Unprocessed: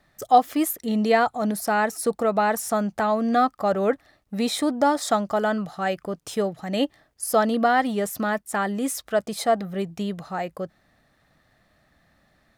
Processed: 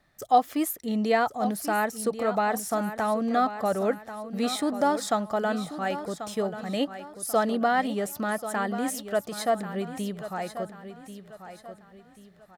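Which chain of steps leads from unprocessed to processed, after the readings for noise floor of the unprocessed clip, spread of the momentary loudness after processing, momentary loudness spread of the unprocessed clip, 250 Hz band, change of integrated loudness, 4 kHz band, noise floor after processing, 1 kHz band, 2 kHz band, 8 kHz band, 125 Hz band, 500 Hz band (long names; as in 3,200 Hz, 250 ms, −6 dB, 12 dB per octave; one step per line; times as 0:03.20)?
−65 dBFS, 12 LU, 10 LU, −3.5 dB, −4.0 dB, −3.5 dB, −54 dBFS, −3.5 dB, −3.5 dB, −3.5 dB, −3.5 dB, −3.5 dB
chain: repeating echo 1,088 ms, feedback 36%, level −11.5 dB
level −4 dB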